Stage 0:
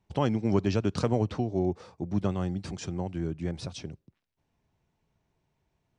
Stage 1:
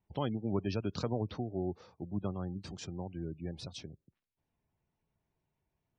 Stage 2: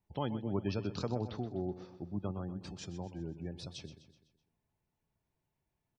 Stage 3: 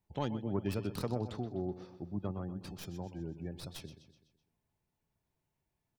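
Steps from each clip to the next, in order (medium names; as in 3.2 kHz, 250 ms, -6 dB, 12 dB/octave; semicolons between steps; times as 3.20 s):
spectral gate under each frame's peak -30 dB strong; dynamic bell 3.8 kHz, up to +6 dB, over -57 dBFS, Q 1.3; trim -8 dB
feedback comb 860 Hz, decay 0.3 s, mix 60%; feedback delay 126 ms, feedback 50%, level -13 dB; trim +6 dB
tracing distortion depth 0.17 ms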